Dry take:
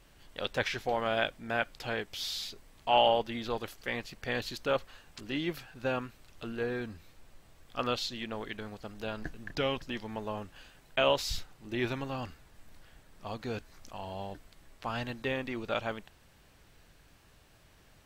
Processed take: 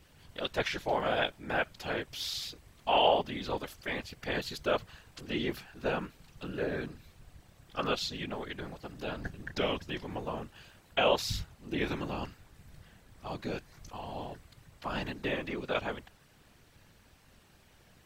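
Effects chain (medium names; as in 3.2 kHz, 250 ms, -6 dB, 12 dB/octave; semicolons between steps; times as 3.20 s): whisper effect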